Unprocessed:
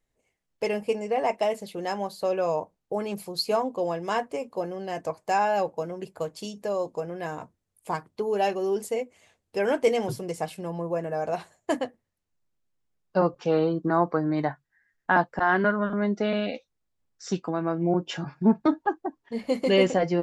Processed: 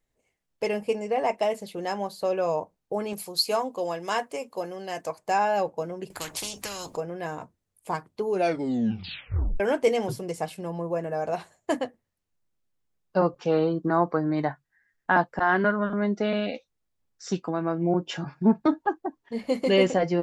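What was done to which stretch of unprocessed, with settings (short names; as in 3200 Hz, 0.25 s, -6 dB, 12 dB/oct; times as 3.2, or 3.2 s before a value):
3.13–5.19 tilt +2 dB/oct
6.1–6.97 spectral compressor 4:1
8.29 tape stop 1.31 s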